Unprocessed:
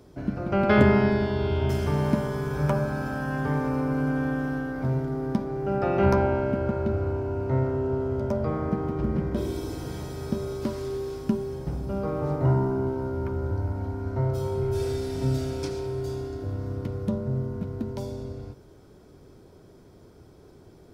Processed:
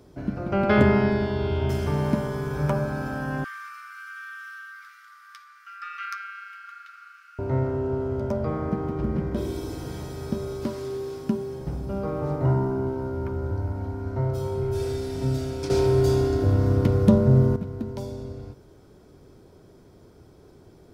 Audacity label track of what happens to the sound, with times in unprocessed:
3.440000	7.390000	brick-wall FIR high-pass 1100 Hz
10.670000	11.610000	HPF 100 Hz
15.700000	17.560000	gain +11 dB

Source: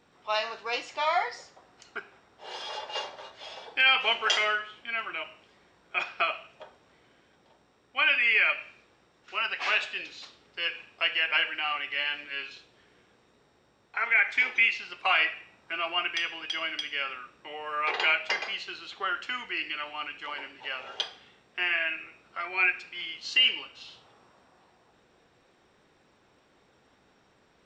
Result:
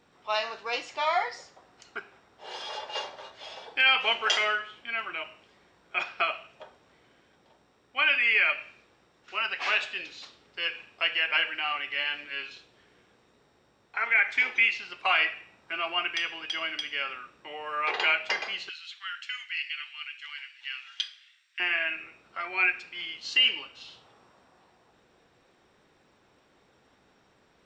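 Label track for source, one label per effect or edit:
18.690000	21.600000	inverse Chebyshev high-pass stop band from 390 Hz, stop band 70 dB

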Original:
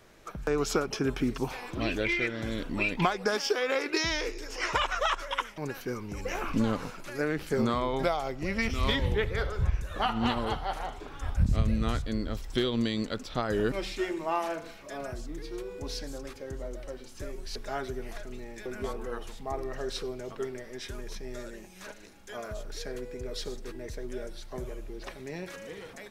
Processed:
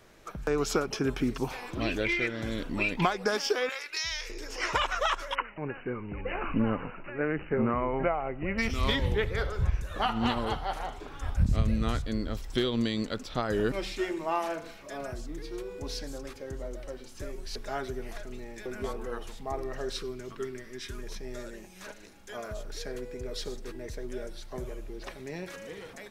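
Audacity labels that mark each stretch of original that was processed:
3.690000	4.300000	passive tone stack bass-middle-treble 10-0-10
5.350000	8.580000	brick-wall FIR low-pass 3000 Hz
19.960000	21.030000	band shelf 640 Hz -9.5 dB 1.1 oct

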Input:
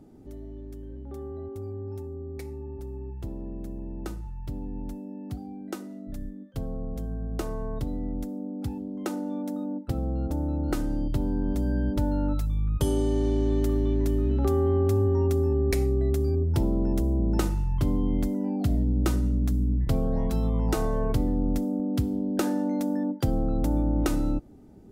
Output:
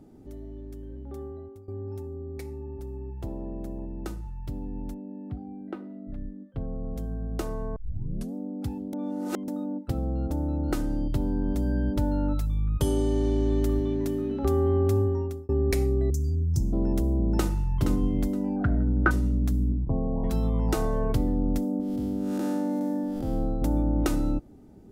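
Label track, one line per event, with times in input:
1.210000	1.680000	fade out, to -17 dB
3.170000	3.860000	dynamic EQ 720 Hz, up to +7 dB, over -59 dBFS, Q 1
4.940000	6.850000	air absorption 490 m
7.760000	7.760000	tape start 0.58 s
8.930000	9.480000	reverse
13.790000	14.430000	HPF 66 Hz -> 210 Hz
14.980000	15.490000	fade out
16.100000	16.730000	EQ curve 170 Hz 0 dB, 540 Hz -19 dB, 3100 Hz -23 dB, 6300 Hz +10 dB, 10000 Hz -2 dB
17.330000	17.760000	echo throw 0.47 s, feedback 20%, level -7.5 dB
18.560000	19.110000	synth low-pass 1500 Hz, resonance Q 11
19.720000	20.240000	rippled Chebyshev low-pass 1100 Hz, ripple 3 dB
21.800000	23.620000	time blur width 0.25 s

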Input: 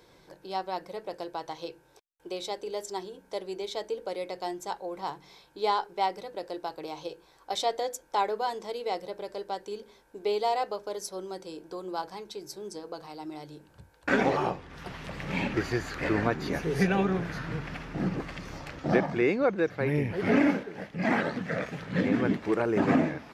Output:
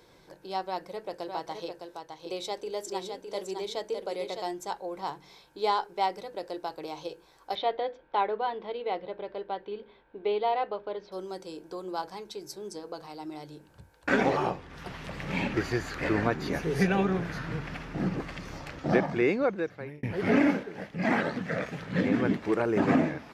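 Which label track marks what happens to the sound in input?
0.660000	4.420000	echo 0.61 s -6 dB
7.550000	11.120000	steep low-pass 3600 Hz
19.350000	20.030000	fade out

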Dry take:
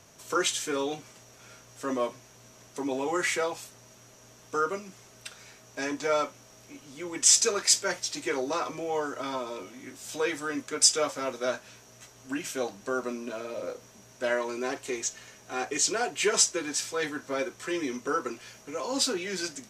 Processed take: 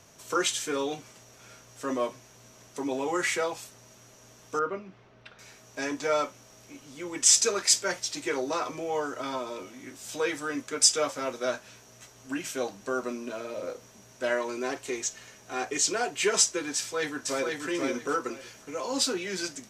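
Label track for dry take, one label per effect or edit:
4.590000	5.390000	air absorption 340 m
16.760000	17.670000	echo throw 0.49 s, feedback 20%, level -3 dB

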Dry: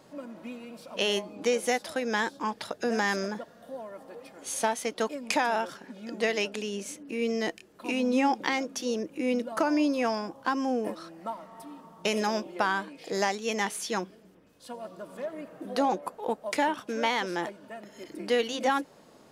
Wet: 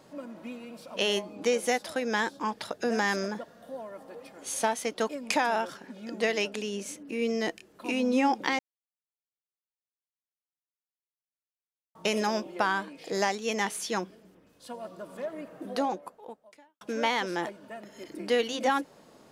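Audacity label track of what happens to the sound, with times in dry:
8.590000	11.950000	mute
15.660000	16.810000	fade out quadratic

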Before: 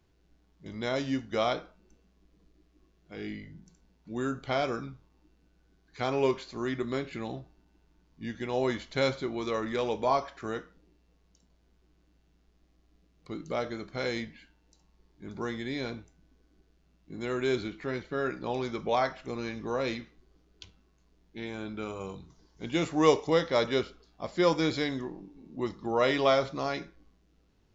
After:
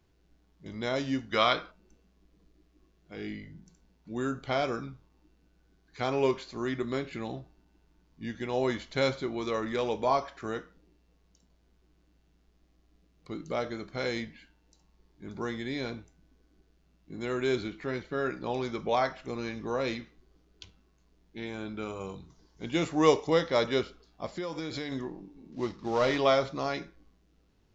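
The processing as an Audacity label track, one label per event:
1.320000	1.710000	spectral gain 930–5200 Hz +8 dB
24.260000	24.920000	compressor 12:1, threshold -31 dBFS
25.520000	26.180000	CVSD 32 kbps

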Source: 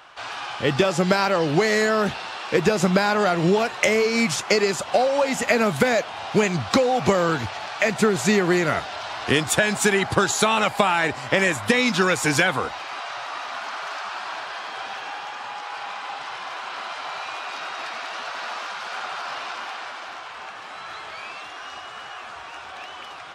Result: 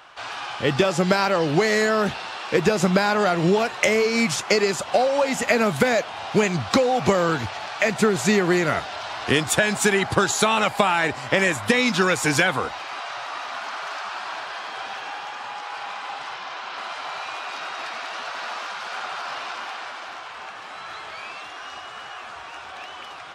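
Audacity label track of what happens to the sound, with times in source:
16.340000	16.780000	Chebyshev band-pass 120–5800 Hz

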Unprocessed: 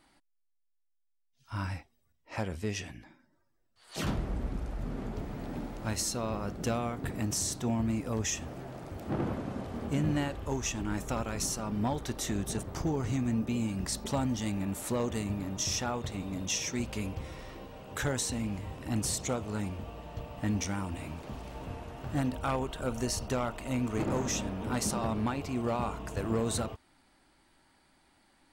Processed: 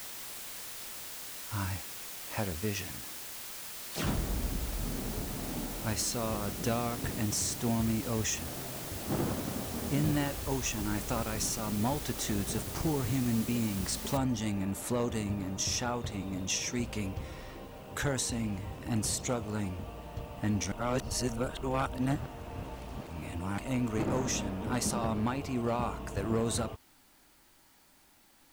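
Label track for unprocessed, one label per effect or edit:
6.920000	8.620000	mismatched tape noise reduction encoder only
14.170000	14.170000	noise floor step -43 dB -65 dB
20.720000	23.580000	reverse

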